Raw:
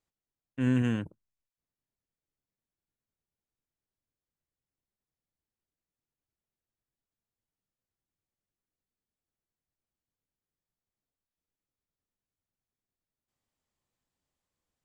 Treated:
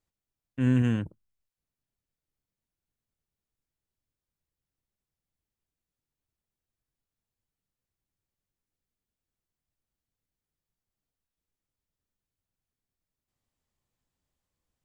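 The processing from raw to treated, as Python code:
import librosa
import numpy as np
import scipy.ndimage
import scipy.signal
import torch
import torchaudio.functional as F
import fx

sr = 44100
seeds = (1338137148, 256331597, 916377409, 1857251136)

y = fx.low_shelf(x, sr, hz=140.0, db=8.0)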